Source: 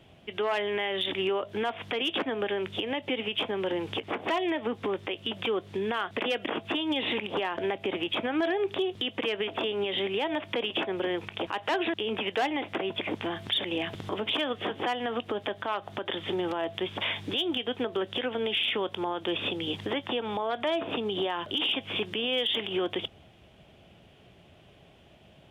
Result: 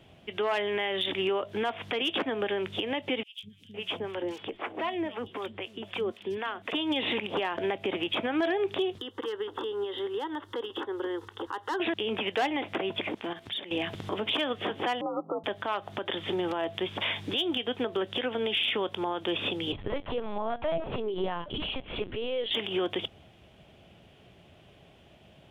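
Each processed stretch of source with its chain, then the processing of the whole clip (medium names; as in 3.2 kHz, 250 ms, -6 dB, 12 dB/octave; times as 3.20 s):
3.23–6.73 s: three bands offset in time highs, lows, mids 200/510 ms, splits 190/3900 Hz + harmonic tremolo 3.9 Hz, crossover 660 Hz
8.98–11.80 s: peaking EQ 190 Hz -3.5 dB 1.7 oct + static phaser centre 650 Hz, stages 6
13.08–13.71 s: hum notches 50/100/150/200 Hz + level held to a coarse grid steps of 11 dB
15.01–15.44 s: Chebyshev low-pass 1.3 kHz, order 10 + frequency shift +63 Hz
19.72–22.51 s: low-pass 1.5 kHz 6 dB/octave + LPC vocoder at 8 kHz pitch kept
whole clip: none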